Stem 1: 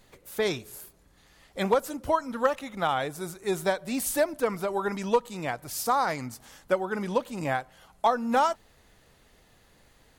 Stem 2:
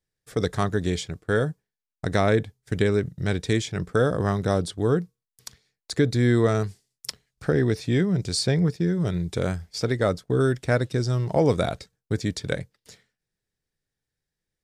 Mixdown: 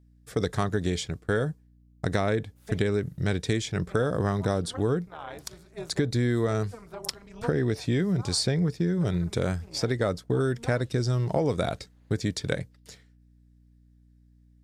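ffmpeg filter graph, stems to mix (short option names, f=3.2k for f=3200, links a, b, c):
-filter_complex "[0:a]highshelf=f=5.9k:g=-10.5,tremolo=f=230:d=0.889,adelay=2300,volume=-6dB[a];[1:a]acompressor=threshold=-22dB:ratio=6,aeval=exprs='val(0)+0.00141*(sin(2*PI*60*n/s)+sin(2*PI*2*60*n/s)/2+sin(2*PI*3*60*n/s)/3+sin(2*PI*4*60*n/s)/4+sin(2*PI*5*60*n/s)/5)':c=same,volume=0.5dB,asplit=2[b][c];[c]apad=whole_len=550757[d];[a][d]sidechaincompress=threshold=-36dB:ratio=8:attack=6.4:release=335[e];[e][b]amix=inputs=2:normalize=0"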